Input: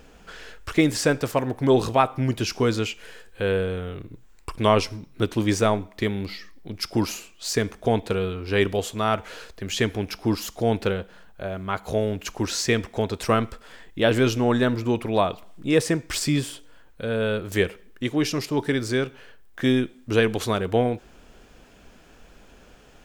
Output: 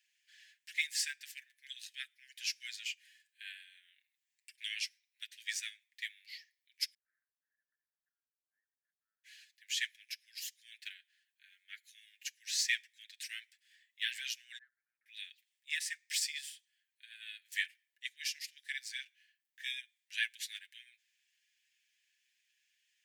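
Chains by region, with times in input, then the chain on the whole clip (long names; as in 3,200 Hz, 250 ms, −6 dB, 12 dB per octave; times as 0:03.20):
0:06.94–0:09.24: Gaussian smoothing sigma 12 samples + level that may fall only so fast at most 25 dB per second
0:14.58–0:15.06: elliptic band-pass filter 690–1,400 Hz, stop band 50 dB + multiband upward and downward compressor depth 100%
whole clip: Butterworth high-pass 1,700 Hz 96 dB per octave; comb filter 7 ms, depth 57%; expander for the loud parts 1.5 to 1, over −50 dBFS; level −5.5 dB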